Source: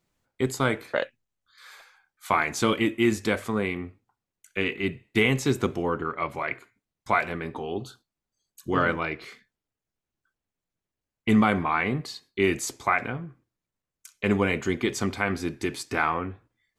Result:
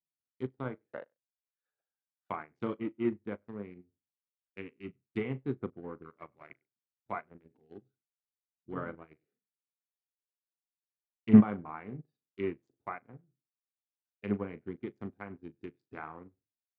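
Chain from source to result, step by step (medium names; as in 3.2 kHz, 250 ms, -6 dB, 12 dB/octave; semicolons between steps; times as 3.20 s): local Wiener filter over 41 samples; Bessel high-pass 160 Hz, order 2; low-pass that closes with the level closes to 1.5 kHz, closed at -24.5 dBFS; bass shelf 220 Hz +8 dB; in parallel at +0.5 dB: level held to a coarse grid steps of 16 dB; on the sum: doubling 39 ms -12 dB; on a send: delay 98 ms -22.5 dB; on the sum: upward expansion 2.5:1, over -32 dBFS; trim -2 dB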